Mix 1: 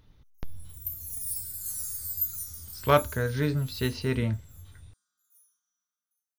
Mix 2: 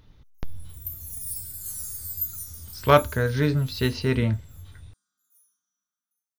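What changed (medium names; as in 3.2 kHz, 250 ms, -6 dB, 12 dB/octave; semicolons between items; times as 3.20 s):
speech +4.5 dB; background: add bass shelf 320 Hz +11 dB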